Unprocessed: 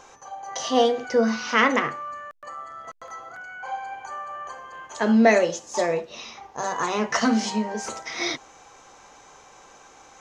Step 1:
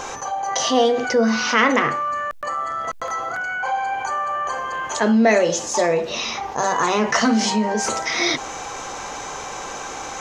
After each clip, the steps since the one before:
envelope flattener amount 50%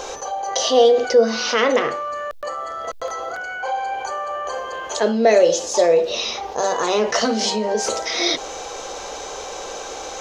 octave-band graphic EQ 125/250/500/1,000/2,000/4,000/8,000 Hz −11/−6/+7/−6/−6/+4/−4 dB
level +1.5 dB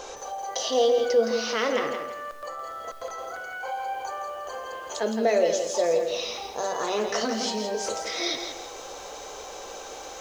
feedback echo at a low word length 166 ms, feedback 35%, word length 7 bits, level −7 dB
level −8.5 dB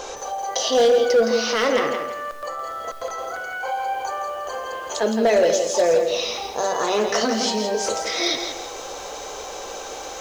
hard clipping −17.5 dBFS, distortion −17 dB
level +6 dB

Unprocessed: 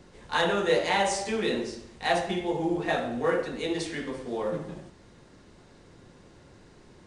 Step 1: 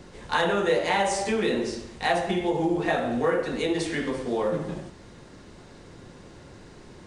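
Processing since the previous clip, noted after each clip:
dynamic equaliser 4,800 Hz, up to −4 dB, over −42 dBFS, Q 0.82
downward compressor 2 to 1, threshold −30 dBFS, peak gain reduction 6.5 dB
level +6.5 dB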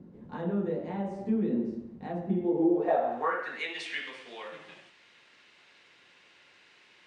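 band-pass filter sweep 210 Hz → 2,600 Hz, 0:02.33–0:03.78
level +3 dB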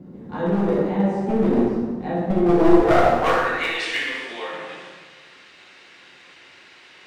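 wavefolder on the positive side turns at −26 dBFS
dense smooth reverb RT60 1.4 s, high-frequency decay 0.75×, DRR −4 dB
level +6.5 dB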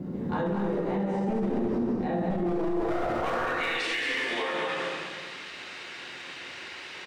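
downward compressor 2.5 to 1, threshold −33 dBFS, peak gain reduction 17 dB
single-tap delay 211 ms −6 dB
brickwall limiter −26.5 dBFS, peak gain reduction 10.5 dB
level +6 dB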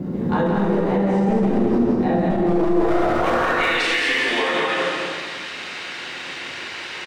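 single-tap delay 169 ms −6 dB
level +8.5 dB

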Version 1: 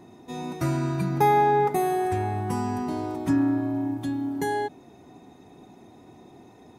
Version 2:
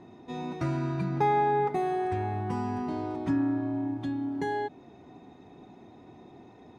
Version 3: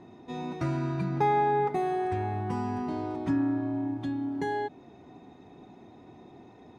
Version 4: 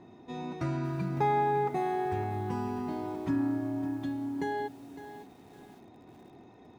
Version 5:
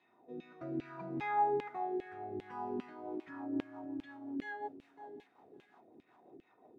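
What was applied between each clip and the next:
low-pass filter 4,100 Hz 12 dB per octave; in parallel at −1.5 dB: downward compressor, threshold −31 dBFS, peak gain reduction 14 dB; on the sum: level −6.5 dB
no processing that can be heard
feedback echo at a low word length 557 ms, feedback 35%, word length 8 bits, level −12.5 dB; level −2.5 dB
auto-filter band-pass saw down 2.5 Hz 290–2,900 Hz; rotating-speaker cabinet horn 0.6 Hz, later 5.5 Hz, at 0:02.56; level +2.5 dB

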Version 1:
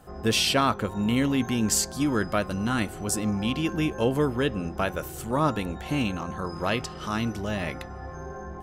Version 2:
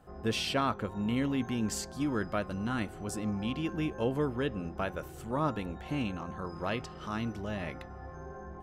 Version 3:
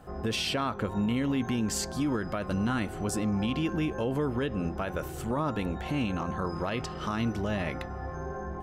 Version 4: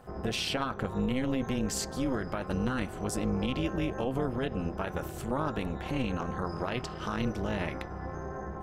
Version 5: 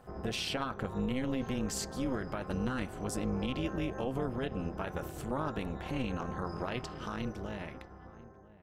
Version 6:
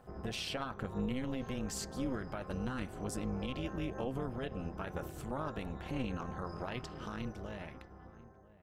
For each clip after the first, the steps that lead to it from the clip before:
high-shelf EQ 4,800 Hz −10 dB; level −6.5 dB
downward compressor 2 to 1, threshold −33 dBFS, peak gain reduction 5 dB; brickwall limiter −29 dBFS, peak gain reduction 7 dB; level +8 dB
amplitude modulation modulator 260 Hz, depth 75%; level +2 dB
fade-out on the ending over 1.87 s; slap from a distant wall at 170 metres, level −18 dB; level −3.5 dB
phase shifter 1 Hz, delay 1.9 ms, feedback 20%; level −4 dB

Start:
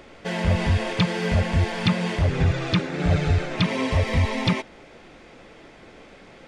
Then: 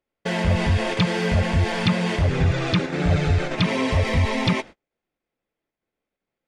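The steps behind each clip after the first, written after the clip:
noise gate −38 dBFS, range −42 dB
in parallel at −1.5 dB: output level in coarse steps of 15 dB
on the sum: level −1 dB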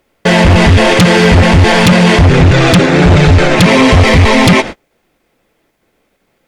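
in parallel at −6.5 dB: sine wavefolder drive 11 dB, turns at −7.5 dBFS
on the sum: boost into a limiter +15 dB
level −1 dB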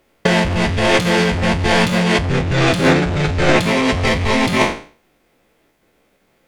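peak hold with a decay on every bin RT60 0.42 s
compressor whose output falls as the input rises −8 dBFS, ratio −0.5
every ending faded ahead of time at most 160 dB per second
level −6 dB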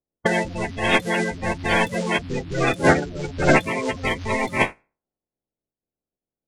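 spectral magnitudes quantised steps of 30 dB
low-pass that shuts in the quiet parts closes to 480 Hz, open at −14.5 dBFS
expander for the loud parts 2.5 to 1, over −29 dBFS

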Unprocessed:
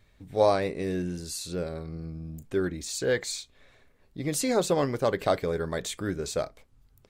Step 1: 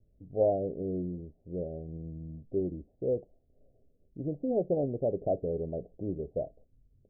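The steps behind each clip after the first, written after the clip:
low-pass that shuts in the quiet parts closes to 470 Hz, open at −25 dBFS
Butterworth low-pass 710 Hz 72 dB per octave
level −3.5 dB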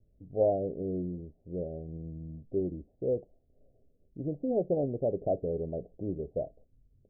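no processing that can be heard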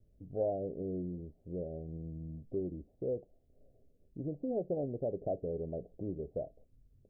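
downward compressor 1.5 to 1, threshold −42 dBFS, peak gain reduction 7.5 dB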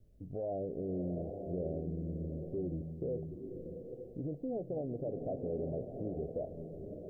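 brickwall limiter −34 dBFS, peak gain reduction 11.5 dB
slow-attack reverb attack 890 ms, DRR 5 dB
level +3 dB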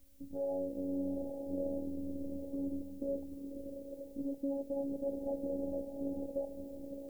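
phases set to zero 278 Hz
background noise blue −73 dBFS
level +3 dB

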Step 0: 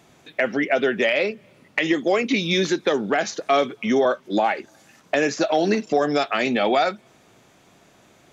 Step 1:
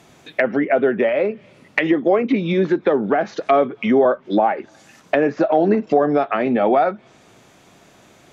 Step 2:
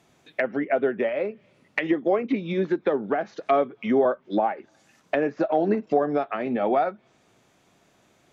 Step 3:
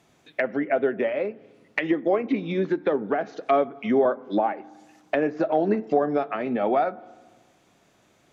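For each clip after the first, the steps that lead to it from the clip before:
treble cut that deepens with the level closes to 1,200 Hz, closed at −18 dBFS; level +4.5 dB
expander for the loud parts 1.5 to 1, over −25 dBFS; level −5 dB
feedback delay network reverb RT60 1.4 s, low-frequency decay 1.3×, high-frequency decay 0.3×, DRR 19 dB

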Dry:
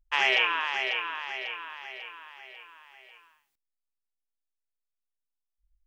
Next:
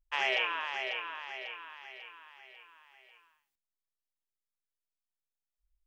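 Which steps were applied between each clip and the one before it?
dynamic equaliser 600 Hz, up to +6 dB, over −49 dBFS, Q 2.4
level −7 dB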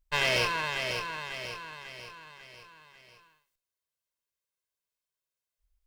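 lower of the sound and its delayed copy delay 1.9 ms
level +5 dB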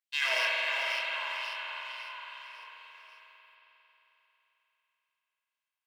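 pitch vibrato 0.4 Hz 30 cents
auto-filter high-pass sine 2.2 Hz 840–3,200 Hz
spring reverb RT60 3.9 s, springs 44 ms, chirp 45 ms, DRR −2.5 dB
level −6.5 dB

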